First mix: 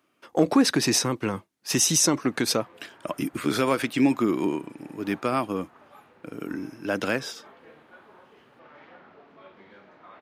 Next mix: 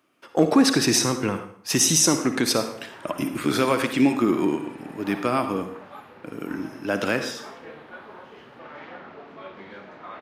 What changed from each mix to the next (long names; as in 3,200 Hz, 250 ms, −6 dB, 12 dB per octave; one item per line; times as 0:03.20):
background +8.5 dB
reverb: on, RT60 0.60 s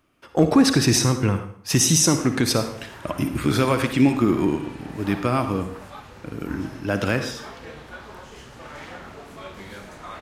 background: remove high-frequency loss of the air 310 metres
master: remove high-pass filter 220 Hz 12 dB per octave